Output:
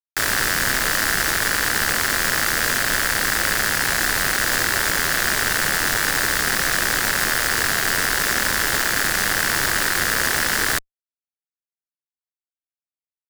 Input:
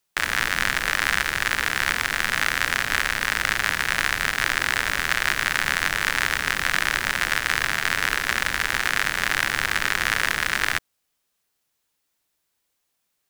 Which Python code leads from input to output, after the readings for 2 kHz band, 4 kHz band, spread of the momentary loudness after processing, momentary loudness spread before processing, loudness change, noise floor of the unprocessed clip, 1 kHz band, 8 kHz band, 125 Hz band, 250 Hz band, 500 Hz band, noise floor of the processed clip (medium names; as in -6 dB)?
+1.5 dB, +3.5 dB, 0 LU, 1 LU, +3.5 dB, -75 dBFS, +2.5 dB, +9.5 dB, +5.0 dB, +7.0 dB, +7.5 dB, under -85 dBFS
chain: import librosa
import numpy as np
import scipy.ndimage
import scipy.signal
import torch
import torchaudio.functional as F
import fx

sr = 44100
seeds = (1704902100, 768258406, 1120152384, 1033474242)

y = fx.bass_treble(x, sr, bass_db=-4, treble_db=11)
y = fx.fuzz(y, sr, gain_db=34.0, gate_db=-28.0)
y = fx.high_shelf(y, sr, hz=4000.0, db=-5.0)
y = np.clip(10.0 ** (17.0 / 20.0) * y, -1.0, 1.0) / 10.0 ** (17.0 / 20.0)
y = y * 10.0 ** (4.5 / 20.0)